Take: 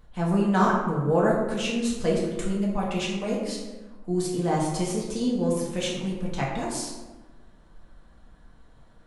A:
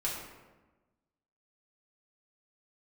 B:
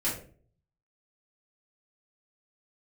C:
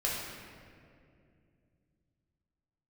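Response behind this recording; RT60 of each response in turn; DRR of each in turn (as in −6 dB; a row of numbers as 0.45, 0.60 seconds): A; 1.2, 0.45, 2.4 seconds; −5.0, −9.5, −5.5 decibels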